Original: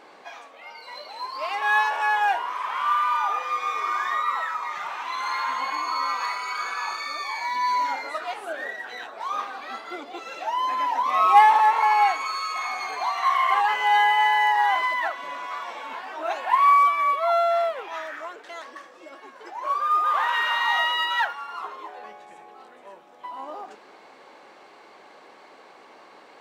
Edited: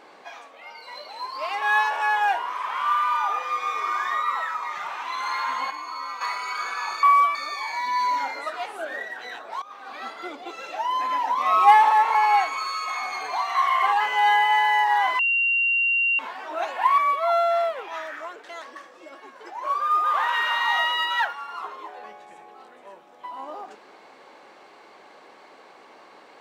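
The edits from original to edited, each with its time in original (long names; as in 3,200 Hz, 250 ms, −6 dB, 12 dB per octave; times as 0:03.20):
0:05.71–0:06.21: clip gain −7 dB
0:09.30–0:09.61: fade in quadratic, from −18 dB
0:14.87–0:15.87: beep over 2,760 Hz −18.5 dBFS
0:16.66–0:16.98: move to 0:07.03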